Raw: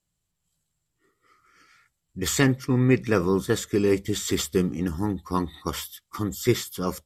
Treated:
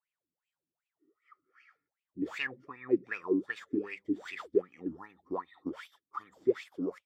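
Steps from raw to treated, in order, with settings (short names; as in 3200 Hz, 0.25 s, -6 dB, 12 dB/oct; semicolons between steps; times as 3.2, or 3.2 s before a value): tracing distortion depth 0.077 ms; in parallel at +2 dB: compressor, threshold -30 dBFS, peak gain reduction 15.5 dB; on the sum: wah 2.6 Hz 270–2600 Hz, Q 10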